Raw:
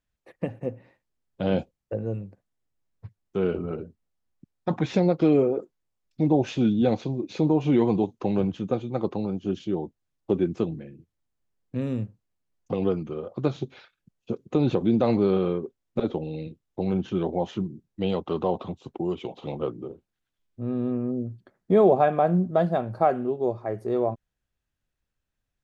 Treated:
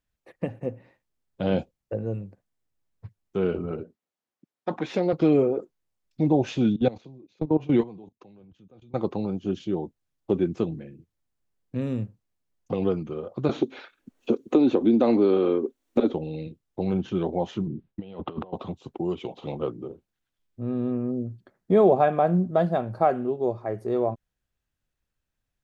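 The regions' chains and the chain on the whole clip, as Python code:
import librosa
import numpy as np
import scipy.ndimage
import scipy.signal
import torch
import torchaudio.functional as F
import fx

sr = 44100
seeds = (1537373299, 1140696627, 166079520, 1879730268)

y = fx.chain(x, sr, fx.self_delay(depth_ms=0.062),
    fx.highpass(hz=280.0, slope=12),
    fx.high_shelf(hz=6000.0, db=-7.0), at=(3.83, 5.13))
y = fx.chain(y, sr, fx.high_shelf(hz=4600.0, db=-5.0),
    fx.level_steps(step_db=20),
    fx.band_widen(depth_pct=70), at=(6.76, 8.94))
y = fx.chain(y, sr, fx.low_shelf_res(hz=200.0, db=-8.5, q=3.0),
    fx.notch(hz=5000.0, q=16.0),
    fx.band_squash(depth_pct=70), at=(13.49, 16.13))
y = fx.chain(y, sr, fx.lowpass(hz=3500.0, slope=24),
    fx.gate_hold(open_db=-54.0, close_db=-58.0, hold_ms=71.0, range_db=-21, attack_ms=1.4, release_ms=100.0),
    fx.over_compress(threshold_db=-33.0, ratio=-0.5), at=(17.67, 18.53))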